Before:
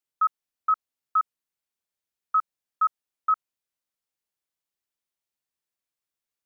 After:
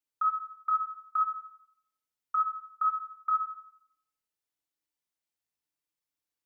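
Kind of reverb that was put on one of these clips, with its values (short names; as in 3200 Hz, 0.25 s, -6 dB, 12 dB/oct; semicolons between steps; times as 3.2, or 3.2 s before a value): FDN reverb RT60 0.69 s, low-frequency decay 1.55×, high-frequency decay 1×, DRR 1 dB; gain -5 dB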